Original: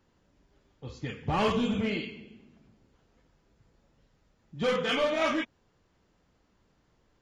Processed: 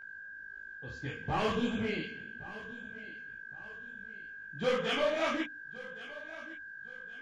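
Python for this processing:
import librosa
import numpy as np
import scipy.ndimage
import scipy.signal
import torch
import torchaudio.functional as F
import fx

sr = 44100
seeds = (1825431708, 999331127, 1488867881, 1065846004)

p1 = fx.hum_notches(x, sr, base_hz=50, count=6)
p2 = p1 + 10.0 ** (-41.0 / 20.0) * np.sin(2.0 * np.pi * 1600.0 * np.arange(len(p1)) / sr)
p3 = p2 + fx.echo_feedback(p2, sr, ms=1117, feedback_pct=38, wet_db=-17.5, dry=0)
y = fx.detune_double(p3, sr, cents=57)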